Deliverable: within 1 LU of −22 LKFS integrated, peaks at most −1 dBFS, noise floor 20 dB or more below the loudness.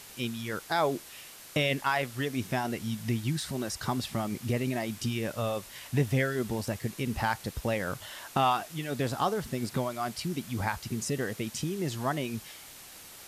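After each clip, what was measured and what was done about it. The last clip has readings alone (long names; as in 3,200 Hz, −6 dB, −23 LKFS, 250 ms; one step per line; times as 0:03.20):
background noise floor −49 dBFS; target noise floor −52 dBFS; integrated loudness −31.5 LKFS; sample peak −15.5 dBFS; target loudness −22.0 LKFS
→ broadband denoise 6 dB, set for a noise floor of −49 dBFS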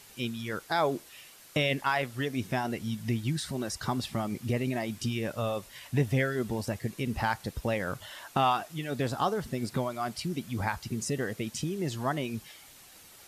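background noise floor −53 dBFS; integrated loudness −32.0 LKFS; sample peak −15.5 dBFS; target loudness −22.0 LKFS
→ level +10 dB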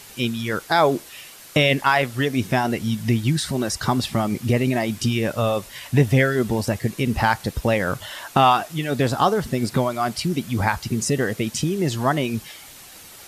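integrated loudness −22.0 LKFS; sample peak −5.5 dBFS; background noise floor −43 dBFS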